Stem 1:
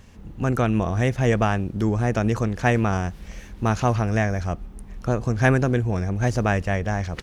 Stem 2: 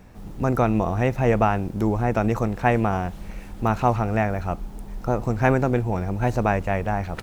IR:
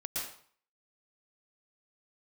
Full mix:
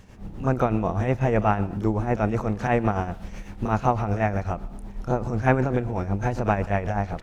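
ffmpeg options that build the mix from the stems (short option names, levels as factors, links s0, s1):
-filter_complex "[0:a]volume=0.944[s0];[1:a]aemphasis=mode=reproduction:type=50kf,adelay=30,volume=1,asplit=3[s1][s2][s3];[s2]volume=0.119[s4];[s3]apad=whole_len=318569[s5];[s0][s5]sidechaincompress=threshold=0.0251:ratio=8:attack=40:release=164[s6];[2:a]atrim=start_sample=2205[s7];[s4][s7]afir=irnorm=-1:irlink=0[s8];[s6][s1][s8]amix=inputs=3:normalize=0,tremolo=f=8:d=0.58"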